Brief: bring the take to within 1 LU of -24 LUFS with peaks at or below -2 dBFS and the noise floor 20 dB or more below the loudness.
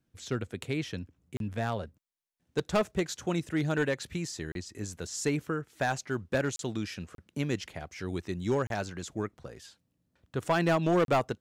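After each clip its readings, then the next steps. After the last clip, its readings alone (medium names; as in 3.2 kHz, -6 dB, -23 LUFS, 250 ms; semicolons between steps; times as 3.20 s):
clipped samples 0.7%; clipping level -20.0 dBFS; dropouts 6; longest dropout 32 ms; loudness -32.5 LUFS; peak level -20.0 dBFS; loudness target -24.0 LUFS
-> clip repair -20 dBFS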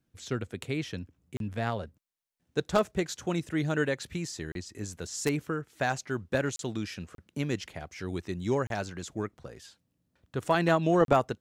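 clipped samples 0.0%; dropouts 6; longest dropout 32 ms
-> interpolate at 1.37/4.52/6.56/7.15/8.67/11.05 s, 32 ms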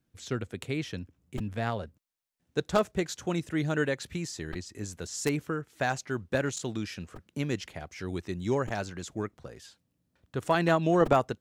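dropouts 0; loudness -31.5 LUFS; peak level -11.0 dBFS; loudness target -24.0 LUFS
-> trim +7.5 dB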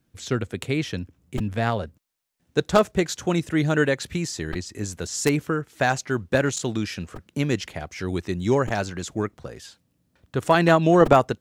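loudness -24.0 LUFS; peak level -3.5 dBFS; noise floor -70 dBFS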